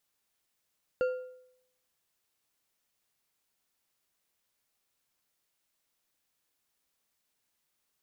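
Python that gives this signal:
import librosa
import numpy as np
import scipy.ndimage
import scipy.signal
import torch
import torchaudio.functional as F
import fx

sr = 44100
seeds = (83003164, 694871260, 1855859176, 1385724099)

y = fx.strike_metal(sr, length_s=1.55, level_db=-23.0, body='bar', hz=507.0, decay_s=0.74, tilt_db=11, modes=5)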